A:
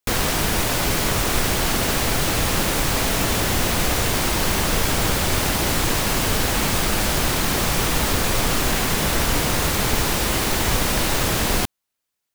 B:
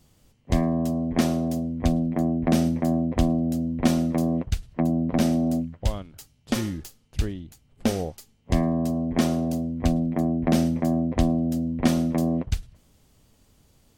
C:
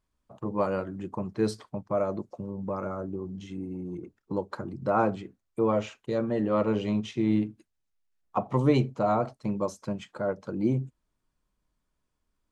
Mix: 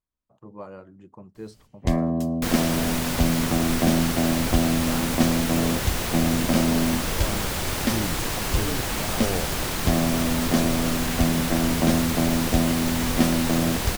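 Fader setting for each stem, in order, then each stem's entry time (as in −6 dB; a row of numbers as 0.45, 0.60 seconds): −6.5, 0.0, −12.0 decibels; 2.35, 1.35, 0.00 seconds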